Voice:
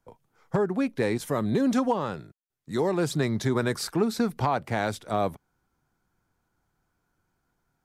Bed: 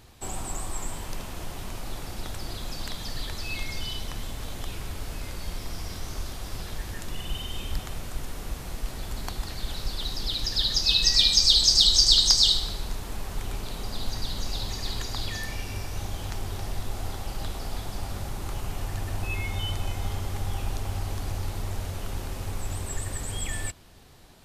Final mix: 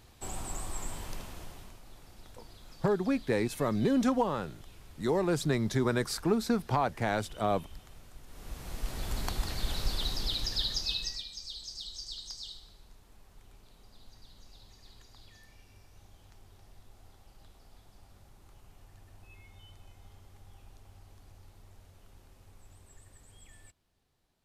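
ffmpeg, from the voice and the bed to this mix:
-filter_complex "[0:a]adelay=2300,volume=0.708[s0];[1:a]volume=3.98,afade=t=out:st=1.06:d=0.73:silence=0.237137,afade=t=in:st=8.26:d=0.87:silence=0.141254,afade=t=out:st=9.91:d=1.33:silence=0.0668344[s1];[s0][s1]amix=inputs=2:normalize=0"

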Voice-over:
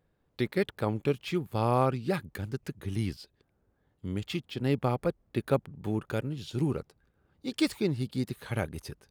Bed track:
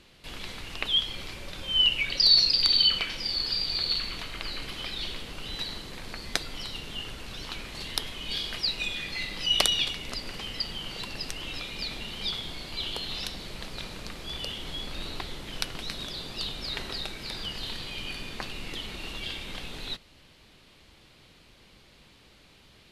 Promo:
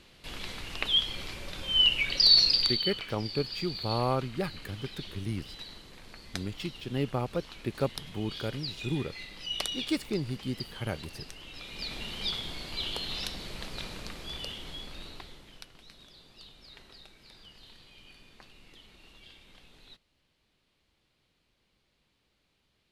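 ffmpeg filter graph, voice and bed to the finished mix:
-filter_complex "[0:a]adelay=2300,volume=0.708[s0];[1:a]volume=2.66,afade=t=out:st=2.53:d=0.26:silence=0.334965,afade=t=in:st=11.53:d=0.5:silence=0.354813,afade=t=out:st=13.9:d=1.76:silence=0.141254[s1];[s0][s1]amix=inputs=2:normalize=0"

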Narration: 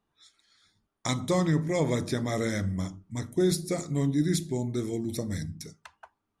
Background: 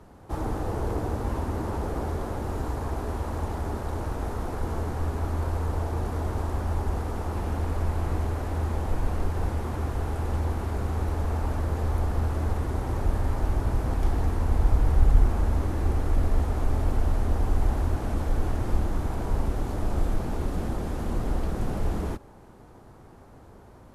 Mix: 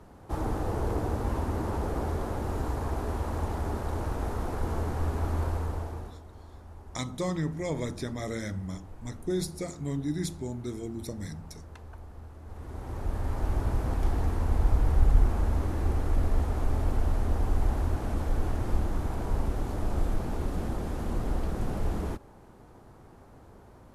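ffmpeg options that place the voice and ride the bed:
-filter_complex "[0:a]adelay=5900,volume=0.531[s0];[1:a]volume=6.31,afade=t=out:st=5.41:d=0.8:silence=0.11885,afade=t=in:st=12.44:d=1.13:silence=0.141254[s1];[s0][s1]amix=inputs=2:normalize=0"

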